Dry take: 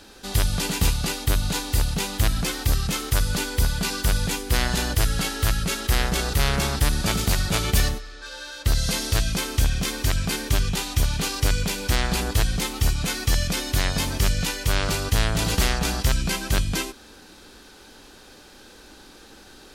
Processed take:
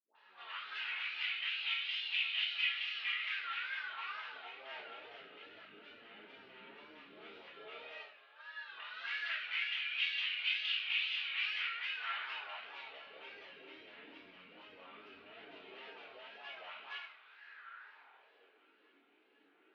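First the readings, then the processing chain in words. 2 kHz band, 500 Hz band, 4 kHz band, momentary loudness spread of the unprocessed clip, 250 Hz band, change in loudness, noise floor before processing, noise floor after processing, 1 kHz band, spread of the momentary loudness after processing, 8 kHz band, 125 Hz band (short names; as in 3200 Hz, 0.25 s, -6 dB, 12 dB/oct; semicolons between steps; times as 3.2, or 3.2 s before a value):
-8.5 dB, -25.0 dB, -11.0 dB, 3 LU, -35.5 dB, -13.5 dB, -48 dBFS, -69 dBFS, -17.5 dB, 21 LU, under -40 dB, under -40 dB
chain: LPF 4000 Hz 24 dB/oct; notches 50/100/150 Hz; spectral gain 14.41–14.8, 410–1300 Hz +8 dB; low shelf 170 Hz -10 dB; in parallel at -1 dB: compressor, threshold -31 dBFS, peak gain reduction 13 dB; on the sum: LFO band-pass sine 0.12 Hz 260–2800 Hz; resonator 51 Hz, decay 0.62 s, harmonics all, mix 80%; wow and flutter 140 cents; band-pass sweep 2700 Hz -> 300 Hz, 17.22–18.6; dispersion highs, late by 0.148 s, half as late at 560 Hz; on a send: band-limited delay 0.967 s, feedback 73%, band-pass 1300 Hz, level -24 dB; on the sum: shoebox room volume 37 m³, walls mixed, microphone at 1.5 m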